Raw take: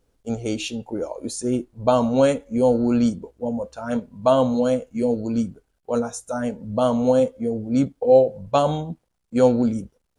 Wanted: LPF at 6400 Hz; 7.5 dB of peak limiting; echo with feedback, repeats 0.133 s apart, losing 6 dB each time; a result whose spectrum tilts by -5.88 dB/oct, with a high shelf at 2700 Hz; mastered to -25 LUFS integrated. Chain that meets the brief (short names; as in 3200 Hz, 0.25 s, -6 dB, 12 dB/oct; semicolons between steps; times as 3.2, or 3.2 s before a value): LPF 6400 Hz; high shelf 2700 Hz +7.5 dB; limiter -11 dBFS; feedback echo 0.133 s, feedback 50%, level -6 dB; gain -3 dB